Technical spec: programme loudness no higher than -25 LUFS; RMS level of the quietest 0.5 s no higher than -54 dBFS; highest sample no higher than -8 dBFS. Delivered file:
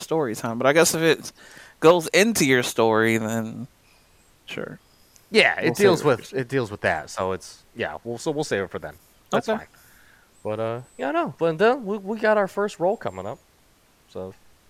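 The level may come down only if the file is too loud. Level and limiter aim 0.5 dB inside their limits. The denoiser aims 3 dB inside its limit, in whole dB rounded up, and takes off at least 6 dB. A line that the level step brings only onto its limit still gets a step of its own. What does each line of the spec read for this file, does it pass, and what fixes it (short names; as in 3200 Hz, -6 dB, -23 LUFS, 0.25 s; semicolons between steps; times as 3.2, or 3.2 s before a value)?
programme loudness -22.0 LUFS: fail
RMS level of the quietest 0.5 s -59 dBFS: OK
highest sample -3.5 dBFS: fail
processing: gain -3.5 dB; limiter -8.5 dBFS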